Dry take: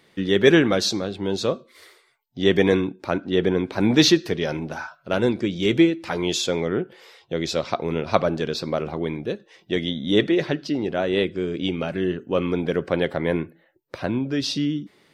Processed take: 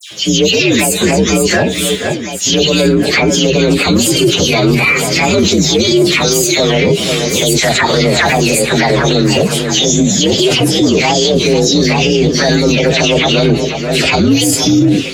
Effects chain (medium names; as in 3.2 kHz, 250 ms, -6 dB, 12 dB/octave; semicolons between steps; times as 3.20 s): frequency axis rescaled in octaves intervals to 125%; frequency weighting D; reverse; compression 6:1, threshold -29 dBFS, peak gain reduction 17 dB; reverse; bass shelf 210 Hz +7.5 dB; band-stop 870 Hz, Q 26; phase dispersion lows, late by 110 ms, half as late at 2.1 kHz; on a send: echo whose repeats swap between lows and highs 486 ms, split 2 kHz, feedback 73%, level -12 dB; on the sum: loudness maximiser +28 dB; trim -1.5 dB